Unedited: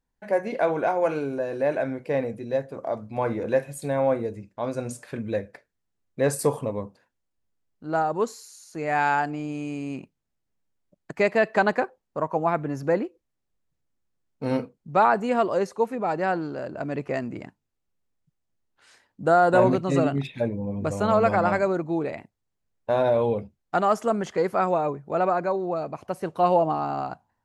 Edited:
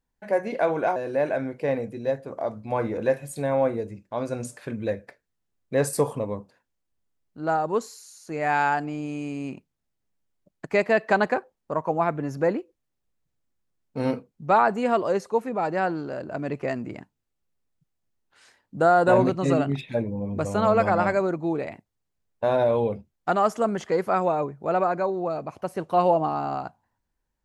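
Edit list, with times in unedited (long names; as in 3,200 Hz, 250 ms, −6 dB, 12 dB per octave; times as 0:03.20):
0:00.96–0:01.42: remove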